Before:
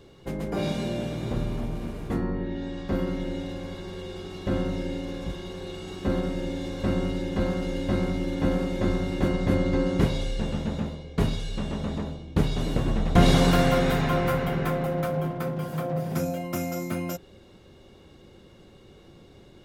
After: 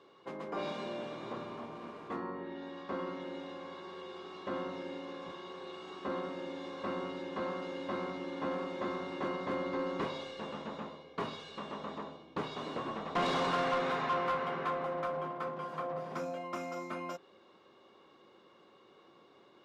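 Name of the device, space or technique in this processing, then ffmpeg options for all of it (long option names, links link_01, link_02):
intercom: -af "highpass=330,lowpass=4500,equalizer=frequency=1100:width_type=o:width=0.49:gain=11,asoftclip=type=tanh:threshold=-18.5dB,volume=-7dB"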